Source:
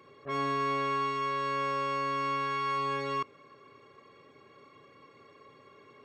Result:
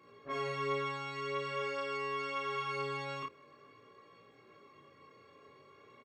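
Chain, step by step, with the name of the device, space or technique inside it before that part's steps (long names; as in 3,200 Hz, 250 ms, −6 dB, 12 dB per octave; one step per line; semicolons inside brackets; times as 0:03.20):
double-tracked vocal (double-tracking delay 34 ms −3 dB; chorus effect 0.48 Hz, delay 17 ms, depth 6 ms)
level −2 dB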